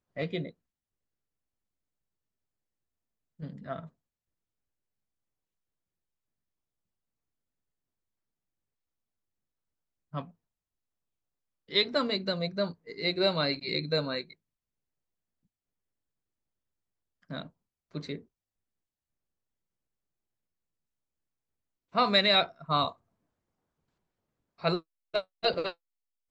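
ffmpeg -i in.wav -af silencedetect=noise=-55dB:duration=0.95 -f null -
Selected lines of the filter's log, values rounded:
silence_start: 0.51
silence_end: 3.39 | silence_duration: 2.88
silence_start: 3.89
silence_end: 10.13 | silence_duration: 6.24
silence_start: 10.31
silence_end: 11.69 | silence_duration: 1.37
silence_start: 14.33
silence_end: 17.23 | silence_duration: 2.90
silence_start: 18.24
silence_end: 21.92 | silence_duration: 3.69
silence_start: 22.96
silence_end: 24.58 | silence_duration: 1.63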